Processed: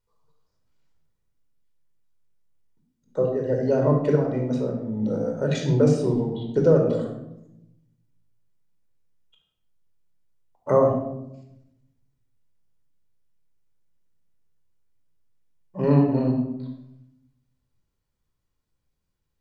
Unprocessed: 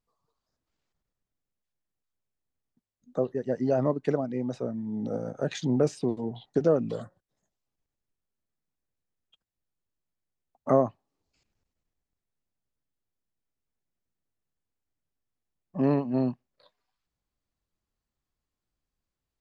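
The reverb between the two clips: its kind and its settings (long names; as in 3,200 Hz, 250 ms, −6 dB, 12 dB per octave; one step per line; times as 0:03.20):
rectangular room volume 2,400 cubic metres, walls furnished, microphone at 4.7 metres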